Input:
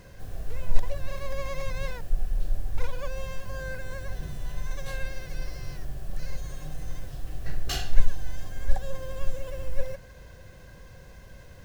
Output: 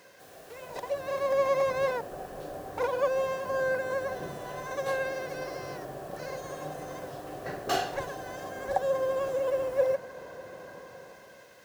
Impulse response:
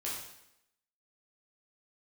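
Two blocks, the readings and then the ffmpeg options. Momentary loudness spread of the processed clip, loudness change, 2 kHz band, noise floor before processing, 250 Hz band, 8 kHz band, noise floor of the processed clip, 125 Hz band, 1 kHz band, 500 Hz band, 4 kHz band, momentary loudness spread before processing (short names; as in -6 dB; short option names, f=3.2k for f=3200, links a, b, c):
17 LU, +5.0 dB, +5.0 dB, -48 dBFS, +3.0 dB, n/a, -52 dBFS, -10.5 dB, +11.0 dB, +12.0 dB, -1.5 dB, 16 LU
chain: -filter_complex "[0:a]highpass=410,acrossover=split=1200[a][b];[a]dynaudnorm=f=280:g=7:m=14dB[c];[b]asoftclip=type=tanh:threshold=-30.5dB[d];[c][d]amix=inputs=2:normalize=0"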